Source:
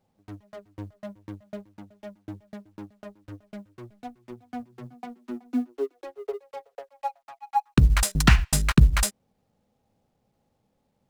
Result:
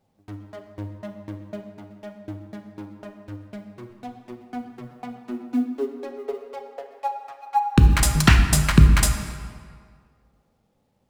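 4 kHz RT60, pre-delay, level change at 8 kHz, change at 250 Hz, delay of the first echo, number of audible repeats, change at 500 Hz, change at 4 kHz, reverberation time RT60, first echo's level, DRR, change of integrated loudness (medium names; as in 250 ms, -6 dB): 1.3 s, 9 ms, +3.0 dB, +4.0 dB, no echo, no echo, +3.0 dB, +3.5 dB, 1.9 s, no echo, 4.5 dB, +3.5 dB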